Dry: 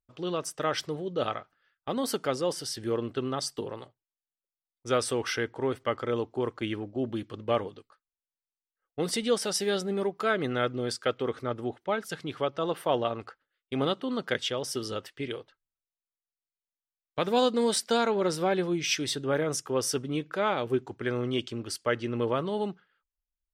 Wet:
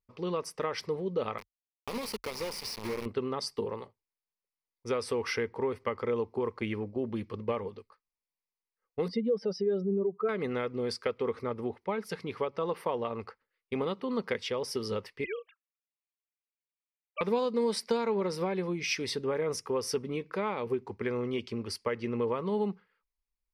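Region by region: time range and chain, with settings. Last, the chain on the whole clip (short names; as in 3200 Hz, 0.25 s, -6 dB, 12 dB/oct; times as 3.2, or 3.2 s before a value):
1.38–3.06 resonant high shelf 2200 Hz +6.5 dB, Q 1.5 + compressor 4:1, threshold -34 dBFS + requantised 6-bit, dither none
9.08–10.29 spectral contrast raised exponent 1.9 + air absorption 250 m
15.24–17.21 sine-wave speech + HPF 1100 Hz 6 dB/oct + bell 2800 Hz +8 dB 2.4 oct
whole clip: high shelf 4800 Hz -9.5 dB; compressor, threshold -28 dBFS; ripple EQ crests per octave 0.87, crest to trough 9 dB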